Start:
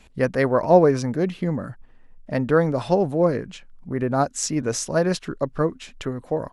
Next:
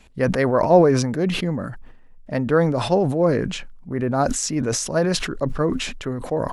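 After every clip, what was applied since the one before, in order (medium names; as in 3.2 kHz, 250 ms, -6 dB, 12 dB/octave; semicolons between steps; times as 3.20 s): decay stretcher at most 48 dB/s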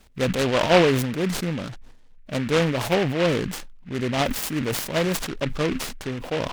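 delay time shaken by noise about 1.9 kHz, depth 0.12 ms; trim -3 dB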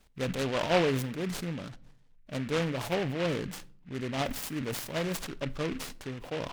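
simulated room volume 800 m³, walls furnished, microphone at 0.33 m; trim -9 dB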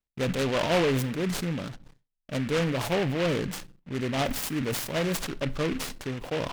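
gate with hold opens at -48 dBFS; waveshaping leveller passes 2; trim -2 dB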